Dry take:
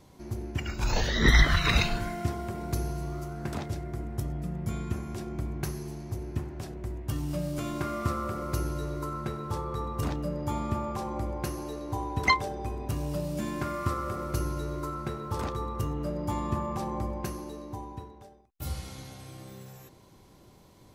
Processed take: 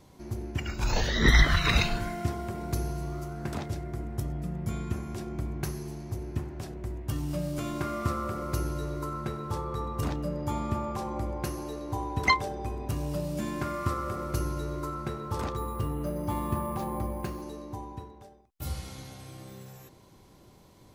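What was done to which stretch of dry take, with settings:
15.57–17.42 s: careless resampling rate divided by 4×, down filtered, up hold

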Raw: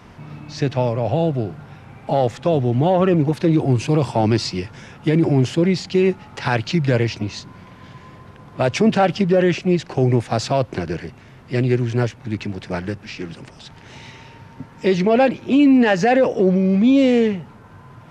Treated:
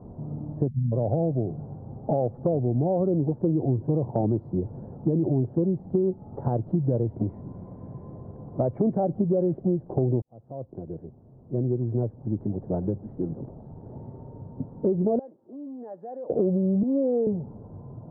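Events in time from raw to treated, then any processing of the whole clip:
0.68–0.92 s: spectral selection erased 250–1900 Hz
7.16–9.00 s: resonant low-pass 2.3 kHz, resonance Q 11
10.22–13.26 s: fade in
15.19–16.30 s: differentiator
16.83–17.27 s: high-pass 390 Hz
whole clip: inverse Chebyshev low-pass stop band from 2.3 kHz, stop band 60 dB; compression 4:1, threshold -24 dBFS; trim +2 dB

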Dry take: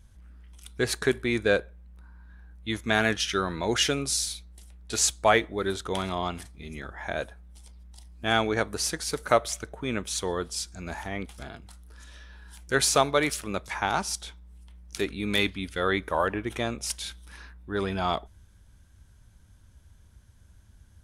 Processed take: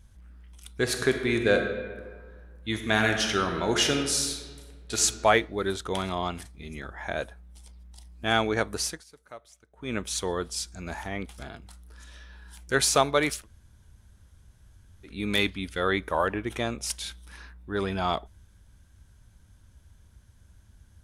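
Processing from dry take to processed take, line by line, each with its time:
0.81–5.01 s: reverb throw, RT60 1.6 s, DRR 4.5 dB
8.81–9.96 s: dip -23 dB, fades 0.23 s
13.39–15.11 s: room tone, crossfade 0.16 s

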